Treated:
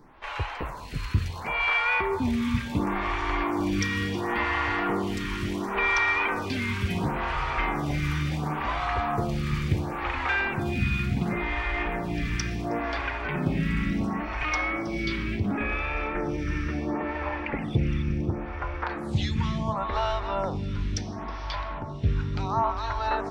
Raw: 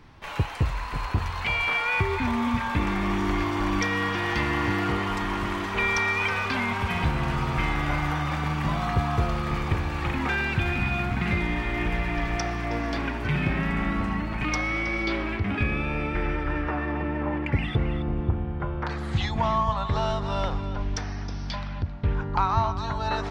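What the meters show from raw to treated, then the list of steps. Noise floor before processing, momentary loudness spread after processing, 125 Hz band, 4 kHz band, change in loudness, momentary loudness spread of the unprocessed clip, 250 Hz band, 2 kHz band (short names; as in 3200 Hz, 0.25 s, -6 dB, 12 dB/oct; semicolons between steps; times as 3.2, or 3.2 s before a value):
-32 dBFS, 6 LU, -2.0 dB, -2.0 dB, -1.0 dB, 5 LU, -1.0 dB, -1.0 dB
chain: on a send: diffused feedback echo 1.951 s, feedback 51%, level -13 dB; on the sum: photocell phaser 0.71 Hz; gain +2 dB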